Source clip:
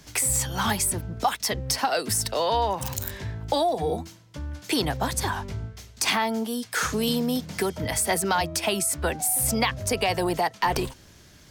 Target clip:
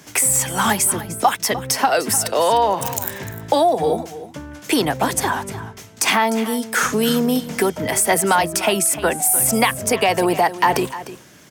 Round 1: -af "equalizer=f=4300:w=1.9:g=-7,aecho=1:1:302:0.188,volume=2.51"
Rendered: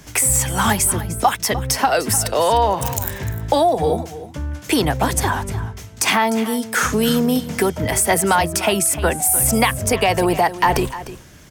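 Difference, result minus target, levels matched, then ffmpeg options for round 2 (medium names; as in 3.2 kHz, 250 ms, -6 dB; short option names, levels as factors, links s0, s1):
125 Hz band +6.5 dB
-af "highpass=170,equalizer=f=4300:w=1.9:g=-7,aecho=1:1:302:0.188,volume=2.51"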